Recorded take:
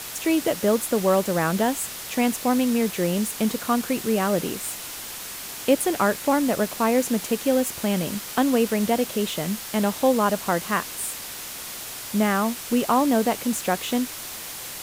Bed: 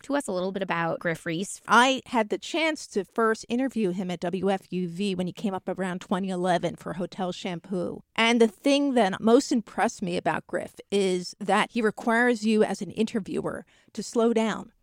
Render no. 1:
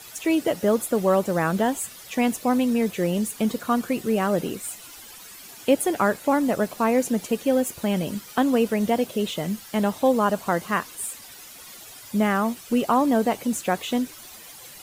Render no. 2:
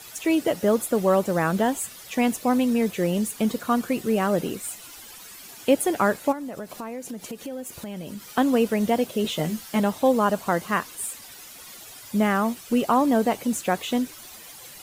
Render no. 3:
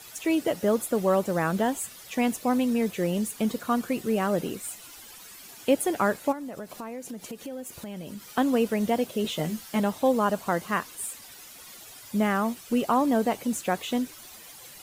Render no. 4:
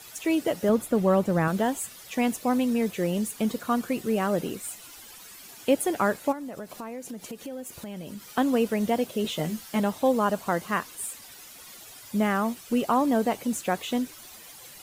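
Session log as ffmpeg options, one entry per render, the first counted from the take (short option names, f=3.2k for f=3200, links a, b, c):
-af "afftdn=nr=12:nf=-36"
-filter_complex "[0:a]asplit=3[a][b][c];[a]afade=t=out:st=6.31:d=0.02[d];[b]acompressor=threshold=-32dB:ratio=5:attack=3.2:release=140:knee=1:detection=peak,afade=t=in:st=6.31:d=0.02,afade=t=out:st=8.29:d=0.02[e];[c]afade=t=in:st=8.29:d=0.02[f];[d][e][f]amix=inputs=3:normalize=0,asettb=1/sr,asplit=3[g][h][i];[g]atrim=end=9.234[j];[h]atrim=start=9.23:end=9.8,asetpts=PTS-STARTPTS,afade=t=in:d=0.004:c=qsin,afade=t=out:st=0.566:d=0.004:c=qsin,asplit=2[k][l];[l]adelay=13,volume=-3.5dB[m];[k][m]amix=inputs=2:normalize=0,atrim=end_sample=25137[n];[i]atrim=start=9.796[o];[j][n]acrossfade=d=0.004:c1=hsin:c2=qsin[p];[p][o]acrossfade=d=0.004:c1=qsin:c2=hsin"
-af "volume=-3dB"
-filter_complex "[0:a]asettb=1/sr,asplit=3[a][b][c];[a]atrim=end=0.694[d];[b]atrim=start=0.69:end=1.48,asetpts=PTS-STARTPTS,afade=t=in:d=0.004:c=qsin,afade=t=out:st=0.786:d=0.004:c=qsin,bass=f=250:g=7,treble=f=4k:g=-5[e];[c]atrim=start=1.476[f];[d][e]acrossfade=d=0.004:c1=hsin:c2=qsin[g];[g][f]acrossfade=d=0.004:c1=qsin:c2=hsin"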